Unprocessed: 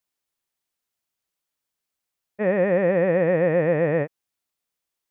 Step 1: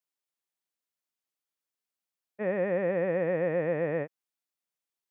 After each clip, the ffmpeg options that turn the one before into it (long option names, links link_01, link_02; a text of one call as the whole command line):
ffmpeg -i in.wav -af "highpass=150,volume=-8dB" out.wav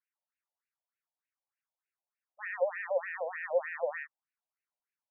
ffmpeg -i in.wav -af "afftfilt=real='re*between(b*sr/1024,680*pow(2100/680,0.5+0.5*sin(2*PI*3.3*pts/sr))/1.41,680*pow(2100/680,0.5+0.5*sin(2*PI*3.3*pts/sr))*1.41)':imag='im*between(b*sr/1024,680*pow(2100/680,0.5+0.5*sin(2*PI*3.3*pts/sr))/1.41,680*pow(2100/680,0.5+0.5*sin(2*PI*3.3*pts/sr))*1.41)':win_size=1024:overlap=0.75,volume=4dB" out.wav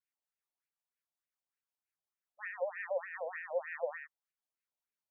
ffmpeg -i in.wav -filter_complex "[0:a]acrossover=split=830[link_01][link_02];[link_01]aeval=exprs='val(0)*(1-0.5/2+0.5/2*cos(2*PI*5.5*n/s))':channel_layout=same[link_03];[link_02]aeval=exprs='val(0)*(1-0.5/2-0.5/2*cos(2*PI*5.5*n/s))':channel_layout=same[link_04];[link_03][link_04]amix=inputs=2:normalize=0,volume=-2dB" out.wav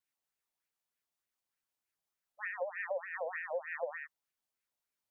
ffmpeg -i in.wav -af "acompressor=threshold=-37dB:ratio=6,volume=3.5dB" out.wav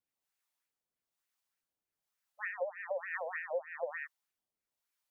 ffmpeg -i in.wav -filter_complex "[0:a]acrossover=split=710[link_01][link_02];[link_01]aeval=exprs='val(0)*(1-0.7/2+0.7/2*cos(2*PI*1.1*n/s))':channel_layout=same[link_03];[link_02]aeval=exprs='val(0)*(1-0.7/2-0.7/2*cos(2*PI*1.1*n/s))':channel_layout=same[link_04];[link_03][link_04]amix=inputs=2:normalize=0,volume=3.5dB" out.wav